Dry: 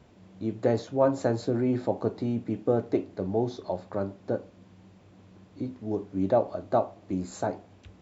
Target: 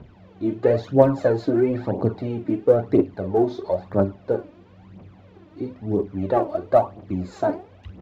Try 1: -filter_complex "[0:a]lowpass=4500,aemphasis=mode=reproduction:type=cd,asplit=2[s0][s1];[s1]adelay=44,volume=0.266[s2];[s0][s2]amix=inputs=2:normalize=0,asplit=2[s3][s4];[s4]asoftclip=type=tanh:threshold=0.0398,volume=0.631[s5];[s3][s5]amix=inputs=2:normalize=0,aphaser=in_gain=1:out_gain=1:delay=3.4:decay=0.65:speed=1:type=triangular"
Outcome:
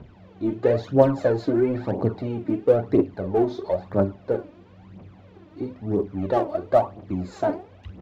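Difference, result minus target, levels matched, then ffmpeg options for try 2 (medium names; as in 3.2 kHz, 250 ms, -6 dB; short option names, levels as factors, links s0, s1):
saturation: distortion +8 dB
-filter_complex "[0:a]lowpass=4500,aemphasis=mode=reproduction:type=cd,asplit=2[s0][s1];[s1]adelay=44,volume=0.266[s2];[s0][s2]amix=inputs=2:normalize=0,asplit=2[s3][s4];[s4]asoftclip=type=tanh:threshold=0.119,volume=0.631[s5];[s3][s5]amix=inputs=2:normalize=0,aphaser=in_gain=1:out_gain=1:delay=3.4:decay=0.65:speed=1:type=triangular"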